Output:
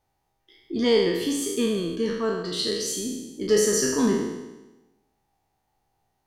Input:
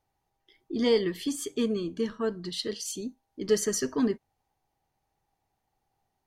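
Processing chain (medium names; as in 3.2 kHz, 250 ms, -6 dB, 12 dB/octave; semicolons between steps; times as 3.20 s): spectral sustain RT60 1.07 s; trim +2 dB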